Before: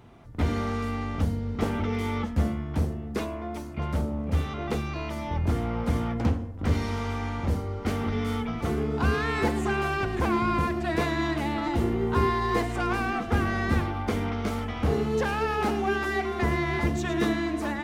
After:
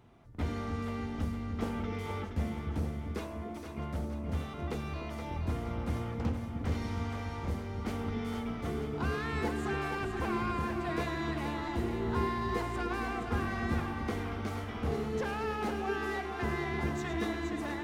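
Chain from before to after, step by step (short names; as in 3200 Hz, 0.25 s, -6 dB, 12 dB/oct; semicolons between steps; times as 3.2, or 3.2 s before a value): split-band echo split 450 Hz, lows 0.297 s, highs 0.471 s, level -6.5 dB; gain -8.5 dB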